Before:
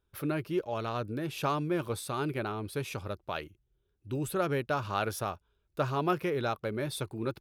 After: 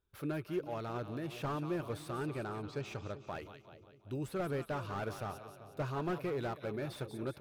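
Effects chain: 2.2–3.21 steep low-pass 7700 Hz 96 dB/oct; on a send: split-band echo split 650 Hz, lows 0.387 s, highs 0.181 s, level -13.5 dB; on the sum: slew limiter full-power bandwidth 31 Hz; gain -5.5 dB

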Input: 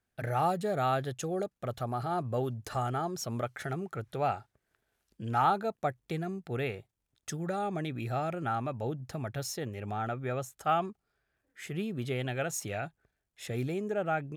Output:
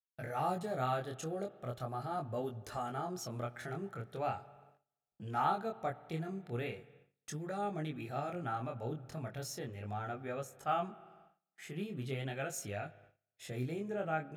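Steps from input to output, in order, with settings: spring tank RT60 2.3 s, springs 58 ms, chirp 65 ms, DRR 17.5 dB; gate -55 dBFS, range -25 dB; chorus 0.39 Hz, delay 19.5 ms, depth 5.9 ms; gain -3 dB

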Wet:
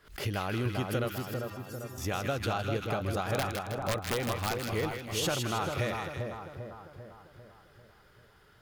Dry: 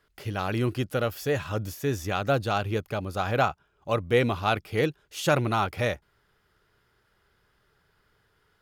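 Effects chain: compressor 8:1, threshold -34 dBFS, peak gain reduction 16.5 dB; 1.18–1.98 metallic resonator 120 Hz, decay 0.49 s, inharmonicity 0.008; 3.34–4.72 wrapped overs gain 27.5 dB; on a send: split-band echo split 1400 Hz, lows 0.396 s, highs 0.158 s, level -4 dB; on the sum: backwards sustainer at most 140 dB/s; gain +4.5 dB

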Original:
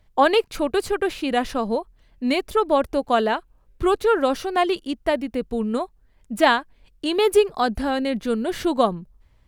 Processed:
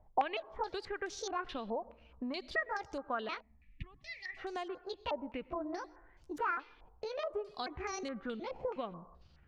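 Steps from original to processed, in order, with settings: trilling pitch shifter +6.5 st, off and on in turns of 0.365 s; compressor 5:1, threshold -34 dBFS, peak gain reduction 20 dB; reverb RT60 0.95 s, pre-delay 92 ms, DRR 19 dB; spectral gain 3.41–4.37, 290–1700 Hz -25 dB; stepped low-pass 4.7 Hz 800–6200 Hz; gain -5.5 dB

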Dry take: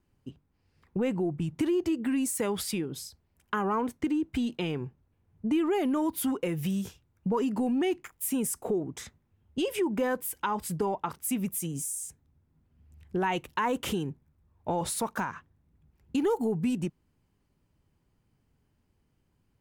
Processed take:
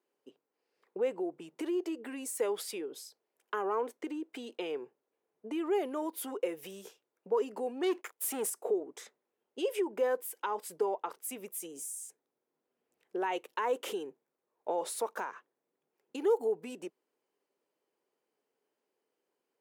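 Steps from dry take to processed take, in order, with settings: 7.83–8.5 sample leveller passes 2; ladder high-pass 380 Hz, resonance 50%; gain +3 dB

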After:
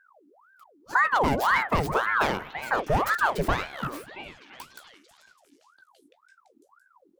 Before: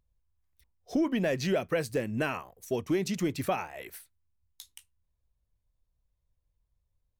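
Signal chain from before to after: tracing distortion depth 0.19 ms; low shelf 160 Hz +12 dB; delay with a stepping band-pass 0.337 s, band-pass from 730 Hz, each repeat 0.7 oct, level -4.5 dB; ring modulator with a swept carrier 930 Hz, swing 70%, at 1.9 Hz; gain +5 dB

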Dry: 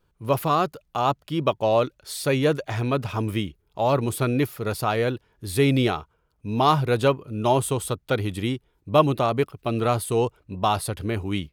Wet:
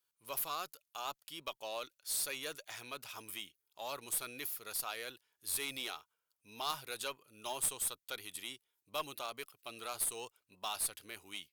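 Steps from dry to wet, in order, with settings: differentiator; added harmonics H 3 -7 dB, 4 -27 dB, 5 -12 dB, 7 -29 dB, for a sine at -16.5 dBFS; gain +2 dB

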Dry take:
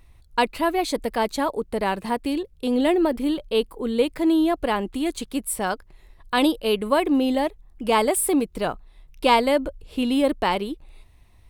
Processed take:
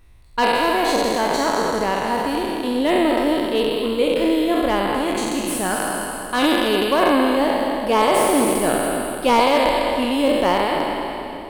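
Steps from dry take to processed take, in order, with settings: spectral trails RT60 2.42 s; split-band echo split 390 Hz, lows 0.292 s, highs 0.212 s, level -9 dB; slew limiter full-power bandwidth 490 Hz; gain -1 dB

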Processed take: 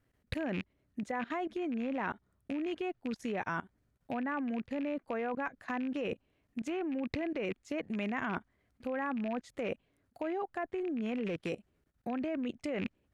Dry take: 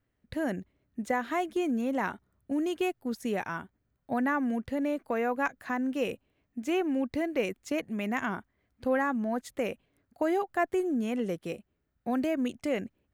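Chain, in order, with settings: rattling part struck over -40 dBFS, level -30 dBFS; treble ducked by the level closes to 2900 Hz, closed at -25.5 dBFS; level quantiser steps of 20 dB; gain +5.5 dB

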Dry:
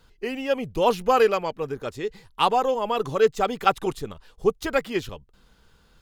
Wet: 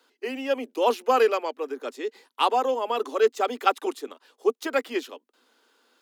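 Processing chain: steep high-pass 240 Hz 96 dB/oct; gain -1.5 dB

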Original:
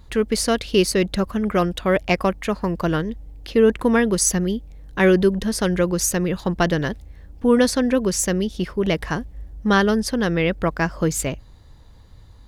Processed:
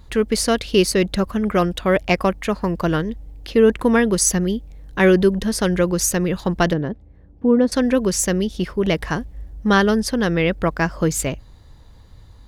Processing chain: 6.73–7.72 band-pass 250 Hz, Q 0.55; gain +1.5 dB

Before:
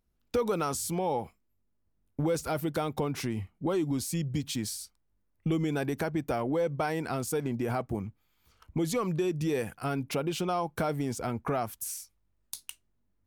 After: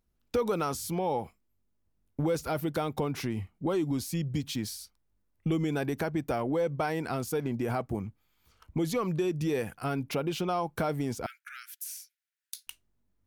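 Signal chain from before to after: 11.26–12.67 steep high-pass 1400 Hz 96 dB/oct; dynamic EQ 8100 Hz, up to -7 dB, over -53 dBFS, Q 1.9

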